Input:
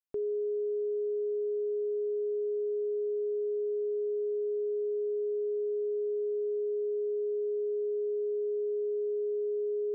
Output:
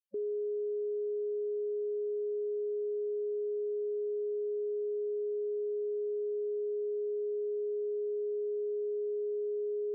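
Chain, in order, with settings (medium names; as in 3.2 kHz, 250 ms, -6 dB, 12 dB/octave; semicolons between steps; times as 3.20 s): loudest bins only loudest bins 16; peak limiter -38.5 dBFS, peak gain reduction 10.5 dB; trim +7.5 dB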